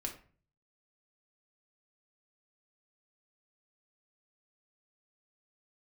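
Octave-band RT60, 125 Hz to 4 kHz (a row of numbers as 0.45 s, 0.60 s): 0.75 s, 0.55 s, 0.45 s, 0.40 s, 0.40 s, 0.30 s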